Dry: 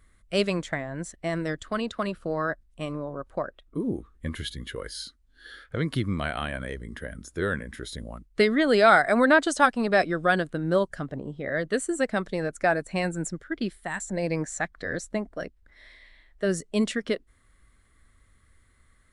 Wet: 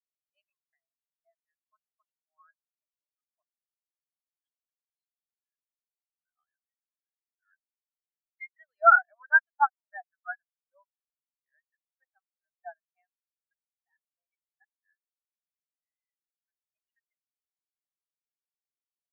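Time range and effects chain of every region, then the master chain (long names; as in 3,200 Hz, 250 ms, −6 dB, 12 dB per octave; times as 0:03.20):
0:04.92–0:06.38: downward compressor 4 to 1, threshold −33 dBFS + mid-hump overdrive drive 9 dB, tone 4,800 Hz, clips at −21.5 dBFS
0:15.02–0:16.48: downward compressor 5 to 1, threshold −42 dBFS + all-pass dispersion lows, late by 139 ms, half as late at 1,800 Hz + power curve on the samples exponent 0.35
whole clip: Chebyshev band-pass filter 790–6,000 Hz, order 3; every bin expanded away from the loudest bin 4 to 1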